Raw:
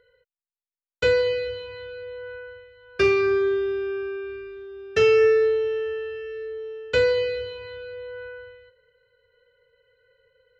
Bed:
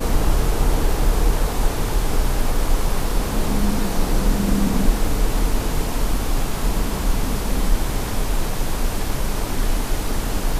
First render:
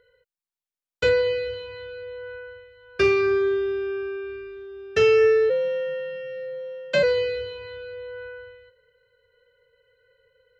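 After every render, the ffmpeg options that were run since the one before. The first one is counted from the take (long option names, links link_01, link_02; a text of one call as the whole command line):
ffmpeg -i in.wav -filter_complex "[0:a]asettb=1/sr,asplit=3[link_01][link_02][link_03];[link_01]atrim=end=1.094[link_04];[link_02]atrim=start=1.09:end=1.54,asetpts=PTS-STARTPTS,afade=type=in:duration=0.004:curve=qsin,afade=type=out:start_time=0.446:duration=0.004:curve=qsin,acrossover=split=4600[link_05][link_06];[link_06]acompressor=threshold=-52dB:ratio=4:attack=1:release=60[link_07];[link_05][link_07]amix=inputs=2:normalize=0[link_08];[link_03]atrim=start=1.536[link_09];[link_04][link_08]acrossfade=duration=0.004:curve1=hsin:curve2=qsin[link_10];[link_10][link_09]acrossfade=duration=0.004:curve1=qsin:curve2=hsin,asplit=3[link_11][link_12][link_13];[link_11]afade=type=out:start_time=5.49:duration=0.02[link_14];[link_12]afreqshift=77,afade=type=in:start_time=5.49:duration=0.02,afade=type=out:start_time=7.02:duration=0.02[link_15];[link_13]afade=type=in:start_time=7.02:duration=0.02[link_16];[link_14][link_15][link_16]amix=inputs=3:normalize=0" out.wav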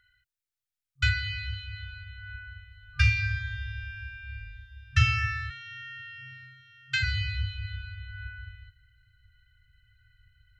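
ffmpeg -i in.wav -af "afftfilt=real='re*(1-between(b*sr/4096,130,1200))':imag='im*(1-between(b*sr/4096,130,1200))':win_size=4096:overlap=0.75,asubboost=boost=10:cutoff=160" out.wav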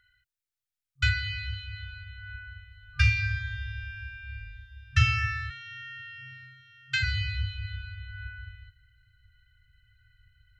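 ffmpeg -i in.wav -af anull out.wav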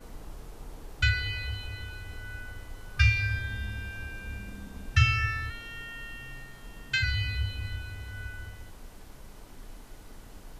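ffmpeg -i in.wav -i bed.wav -filter_complex "[1:a]volume=-25.5dB[link_01];[0:a][link_01]amix=inputs=2:normalize=0" out.wav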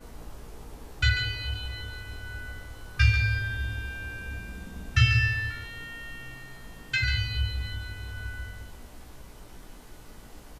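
ffmpeg -i in.wav -filter_complex "[0:a]asplit=2[link_01][link_02];[link_02]adelay=17,volume=-4.5dB[link_03];[link_01][link_03]amix=inputs=2:normalize=0,aecho=1:1:141:0.376" out.wav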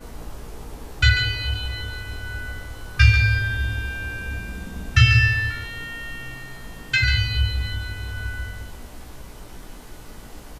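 ffmpeg -i in.wav -af "volume=7dB,alimiter=limit=-3dB:level=0:latency=1" out.wav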